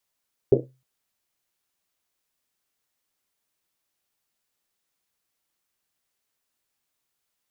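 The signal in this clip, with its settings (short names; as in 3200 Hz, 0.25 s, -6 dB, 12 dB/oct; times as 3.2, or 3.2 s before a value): Risset drum length 0.31 s, pitch 130 Hz, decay 0.36 s, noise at 400 Hz, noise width 310 Hz, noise 75%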